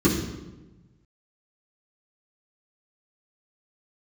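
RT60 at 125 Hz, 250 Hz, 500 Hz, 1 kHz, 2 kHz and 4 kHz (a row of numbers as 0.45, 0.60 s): 1.7, 1.4, 1.2, 1.0, 0.85, 0.80 s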